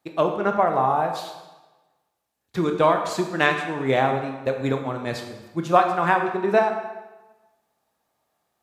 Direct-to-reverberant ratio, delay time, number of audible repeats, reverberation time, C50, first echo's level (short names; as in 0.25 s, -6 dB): 4.0 dB, none, none, 1.1 s, 6.5 dB, none